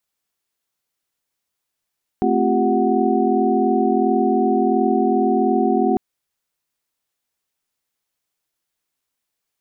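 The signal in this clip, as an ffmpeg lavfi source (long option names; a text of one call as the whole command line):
ffmpeg -f lavfi -i "aevalsrc='0.0891*(sin(2*PI*220*t)+sin(2*PI*261.63*t)+sin(2*PI*349.23*t)+sin(2*PI*392*t)+sin(2*PI*739.99*t))':duration=3.75:sample_rate=44100" out.wav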